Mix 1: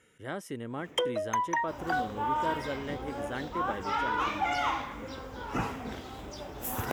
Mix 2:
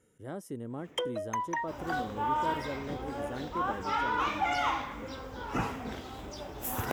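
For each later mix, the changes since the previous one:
speech: add parametric band 2,400 Hz −14.5 dB 2.2 octaves
first sound −4.0 dB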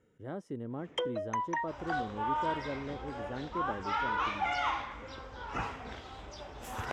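speech: add high-shelf EQ 8,000 Hz −12 dB
second sound: add parametric band 230 Hz −10.5 dB 2.2 octaves
master: add high-frequency loss of the air 84 metres

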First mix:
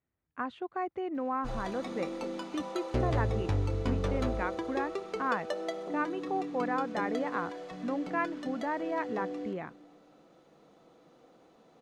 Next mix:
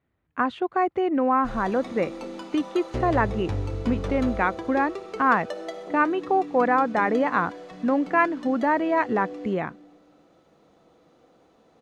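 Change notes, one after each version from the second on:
speech +11.5 dB
background: send +6.0 dB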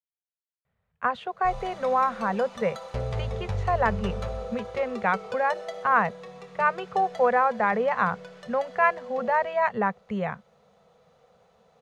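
speech: entry +0.65 s
master: add Chebyshev band-stop filter 200–460 Hz, order 2

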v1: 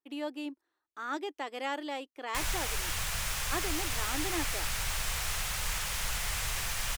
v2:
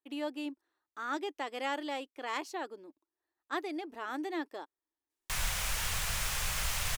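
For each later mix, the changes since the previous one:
background: entry +2.95 s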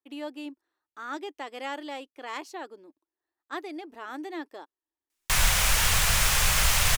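background +11.0 dB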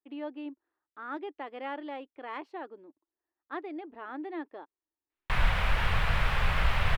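master: add high-frequency loss of the air 480 metres

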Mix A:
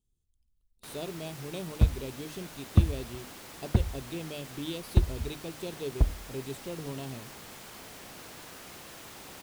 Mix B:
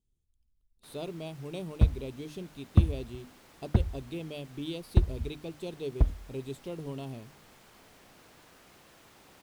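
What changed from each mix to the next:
first sound −9.0 dB
master: add high-shelf EQ 4,400 Hz −5.5 dB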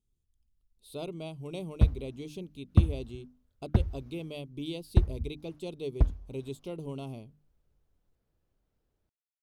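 first sound: muted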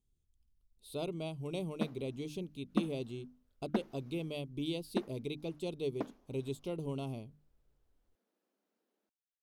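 background: add linear-phase brick-wall high-pass 190 Hz

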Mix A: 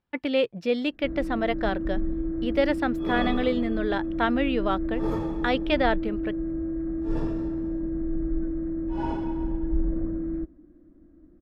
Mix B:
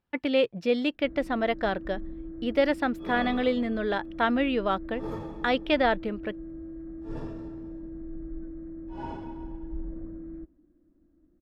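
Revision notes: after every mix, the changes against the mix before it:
first sound −10.5 dB
second sound −5.5 dB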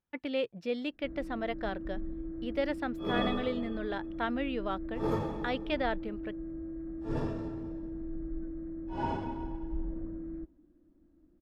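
speech −8.5 dB
second sound +5.0 dB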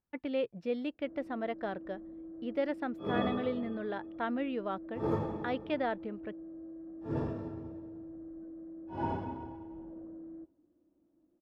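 first sound: add resonant band-pass 630 Hz, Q 1.1
master: add high-shelf EQ 2,500 Hz −11 dB

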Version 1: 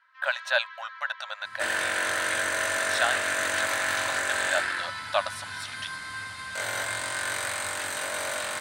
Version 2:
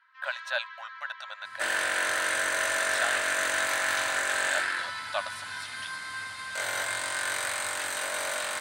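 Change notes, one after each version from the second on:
speech −5.5 dB
master: add low-shelf EQ 250 Hz −9 dB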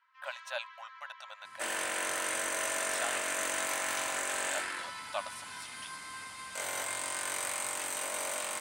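master: add graphic EQ with 15 bands 100 Hz −9 dB, 630 Hz −4 dB, 1,600 Hz −11 dB, 4,000 Hz −8 dB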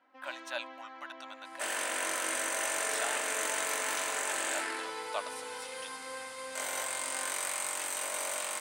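first sound: remove Chebyshev high-pass filter 940 Hz, order 8
master: add bass and treble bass −8 dB, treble +1 dB

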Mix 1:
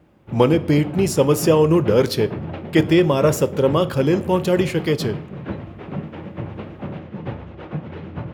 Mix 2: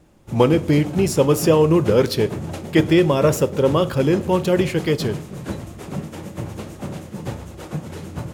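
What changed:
background: remove low-pass filter 3,000 Hz 24 dB per octave
master: remove high-pass filter 63 Hz

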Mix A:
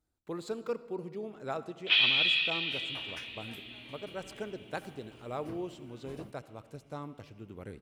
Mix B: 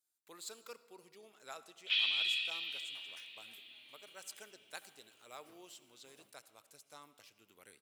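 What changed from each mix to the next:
speech +5.5 dB
second sound: add tilt shelving filter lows +5 dB, about 1,400 Hz
master: add first difference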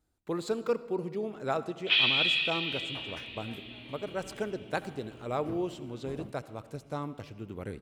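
master: remove first difference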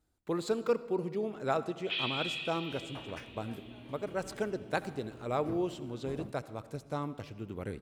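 first sound −10.5 dB

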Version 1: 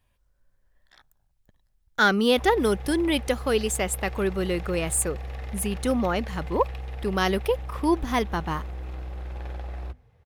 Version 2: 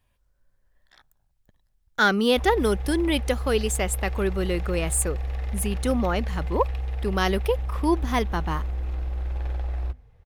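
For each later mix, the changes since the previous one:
background: remove high-pass filter 85 Hz 12 dB per octave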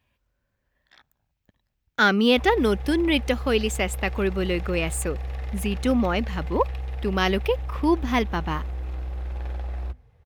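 speech: add graphic EQ with 15 bands 250 Hz +4 dB, 2,500 Hz +6 dB, 10,000 Hz −9 dB
master: add high-pass filter 57 Hz

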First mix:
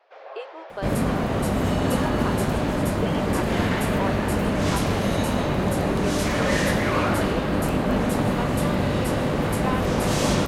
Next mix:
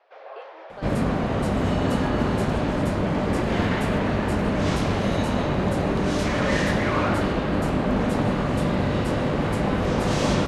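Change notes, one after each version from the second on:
speech −8.5 dB
master: add high-frequency loss of the air 63 metres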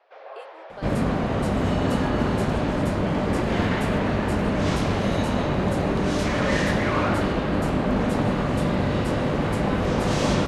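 speech: remove high-frequency loss of the air 160 metres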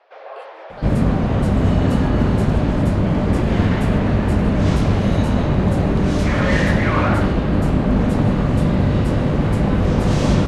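first sound +5.5 dB
second sound: add low-shelf EQ 230 Hz +11.5 dB

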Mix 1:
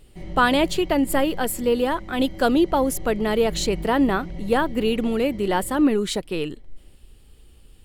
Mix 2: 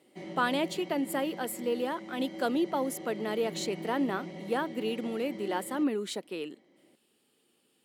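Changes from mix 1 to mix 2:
speech −10.0 dB
master: add high-pass filter 210 Hz 24 dB per octave

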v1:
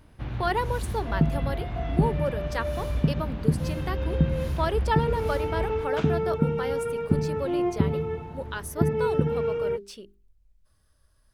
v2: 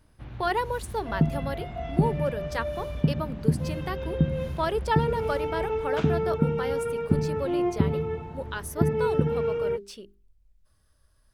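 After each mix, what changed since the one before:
first sound −8.0 dB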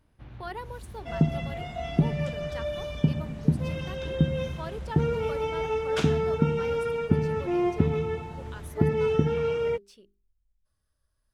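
speech −11.5 dB
first sound −4.5 dB
second sound: remove low-pass filter 1,500 Hz 6 dB per octave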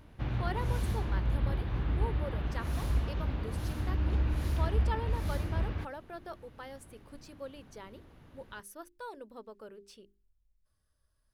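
first sound +12.0 dB
second sound: muted

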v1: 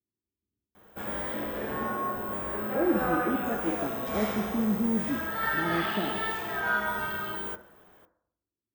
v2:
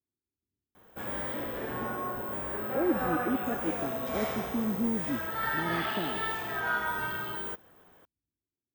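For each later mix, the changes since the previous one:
reverb: off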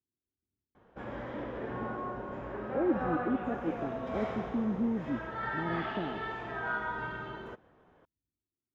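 master: add head-to-tape spacing loss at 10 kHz 29 dB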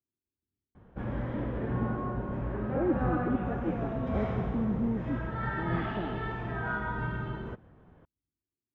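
background: add bass and treble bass +14 dB, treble −7 dB

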